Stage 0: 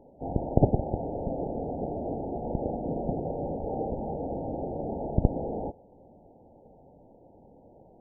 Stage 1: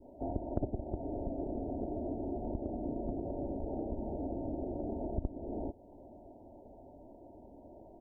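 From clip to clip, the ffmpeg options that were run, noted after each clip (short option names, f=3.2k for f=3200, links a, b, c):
-af "adynamicequalizer=threshold=0.00501:dfrequency=740:dqfactor=1.1:tfrequency=740:tqfactor=1.1:attack=5:release=100:ratio=0.375:range=3:mode=cutabove:tftype=bell,aecho=1:1:3.1:0.64,acompressor=threshold=-35dB:ratio=3"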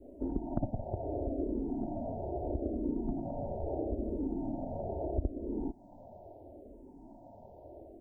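-filter_complex "[0:a]asplit=2[a][b];[b]afreqshift=-0.76[c];[a][c]amix=inputs=2:normalize=1,volume=5dB"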